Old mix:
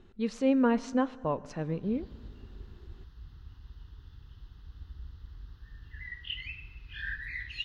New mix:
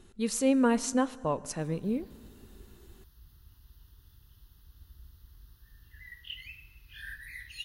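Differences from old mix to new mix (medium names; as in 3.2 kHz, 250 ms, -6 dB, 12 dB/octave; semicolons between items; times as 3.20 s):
background -8.0 dB; master: remove distance through air 210 m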